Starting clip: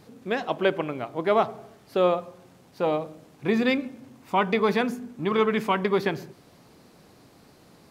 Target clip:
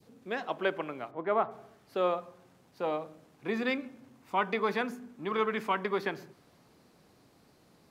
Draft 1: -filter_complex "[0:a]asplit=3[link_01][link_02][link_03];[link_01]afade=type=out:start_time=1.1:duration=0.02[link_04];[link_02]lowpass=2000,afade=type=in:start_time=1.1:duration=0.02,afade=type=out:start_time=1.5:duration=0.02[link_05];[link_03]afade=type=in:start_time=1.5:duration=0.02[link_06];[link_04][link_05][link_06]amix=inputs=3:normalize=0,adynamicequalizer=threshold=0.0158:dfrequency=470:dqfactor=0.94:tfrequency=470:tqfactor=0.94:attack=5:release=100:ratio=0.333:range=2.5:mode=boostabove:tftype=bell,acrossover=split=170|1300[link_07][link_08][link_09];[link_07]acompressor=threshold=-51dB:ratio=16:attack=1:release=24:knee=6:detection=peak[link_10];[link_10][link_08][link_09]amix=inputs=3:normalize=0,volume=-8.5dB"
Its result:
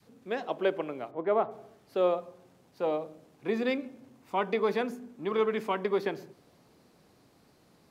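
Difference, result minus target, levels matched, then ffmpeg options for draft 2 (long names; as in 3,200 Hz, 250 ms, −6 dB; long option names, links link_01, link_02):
1,000 Hz band −3.0 dB
-filter_complex "[0:a]asplit=3[link_01][link_02][link_03];[link_01]afade=type=out:start_time=1.1:duration=0.02[link_04];[link_02]lowpass=2000,afade=type=in:start_time=1.1:duration=0.02,afade=type=out:start_time=1.5:duration=0.02[link_05];[link_03]afade=type=in:start_time=1.5:duration=0.02[link_06];[link_04][link_05][link_06]amix=inputs=3:normalize=0,adynamicequalizer=threshold=0.0158:dfrequency=1400:dqfactor=0.94:tfrequency=1400:tqfactor=0.94:attack=5:release=100:ratio=0.333:range=2.5:mode=boostabove:tftype=bell,acrossover=split=170|1300[link_07][link_08][link_09];[link_07]acompressor=threshold=-51dB:ratio=16:attack=1:release=24:knee=6:detection=peak[link_10];[link_10][link_08][link_09]amix=inputs=3:normalize=0,volume=-8.5dB"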